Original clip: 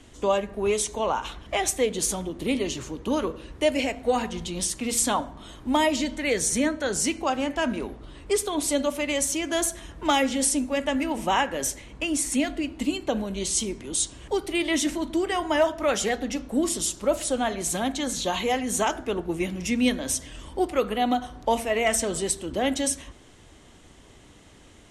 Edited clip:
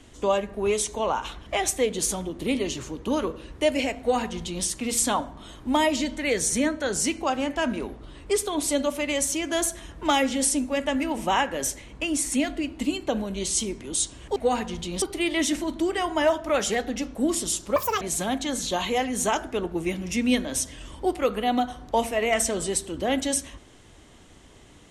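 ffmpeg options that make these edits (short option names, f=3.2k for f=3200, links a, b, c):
-filter_complex "[0:a]asplit=5[a][b][c][d][e];[a]atrim=end=14.362[f];[b]atrim=start=3.988:end=4.652[g];[c]atrim=start=14.358:end=17.104[h];[d]atrim=start=17.1:end=17.55,asetpts=PTS-STARTPTS,asetrate=78939,aresample=44100[i];[e]atrim=start=17.546[j];[f][g]acrossfade=d=0.004:c1=hsin:c2=hsin[k];[k][h]acrossfade=d=0.004:c1=hsin:c2=hsin[l];[l][i]acrossfade=d=0.004:c1=hsin:c2=hsin[m];[m][j]acrossfade=d=0.004:c1=hsin:c2=hsin"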